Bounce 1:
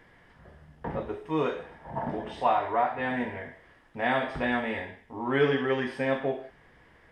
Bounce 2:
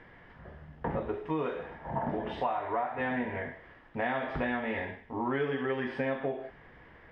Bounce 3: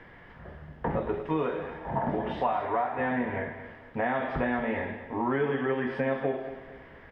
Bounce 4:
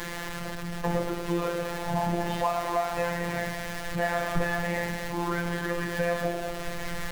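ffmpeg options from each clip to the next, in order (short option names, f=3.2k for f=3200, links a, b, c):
-af "lowpass=3k,acompressor=threshold=-32dB:ratio=6,volume=3.5dB"
-filter_complex "[0:a]acrossover=split=240|2100[a][b][c];[c]alimiter=level_in=20.5dB:limit=-24dB:level=0:latency=1:release=265,volume=-20.5dB[d];[a][b][d]amix=inputs=3:normalize=0,aecho=1:1:227|454|681|908:0.237|0.0901|0.0342|0.013,volume=3.5dB"
-af "aeval=exprs='val(0)+0.5*0.0316*sgn(val(0))':c=same,afftfilt=real='hypot(re,im)*cos(PI*b)':imag='0':win_size=1024:overlap=0.75,asubboost=boost=4:cutoff=140,volume=2.5dB"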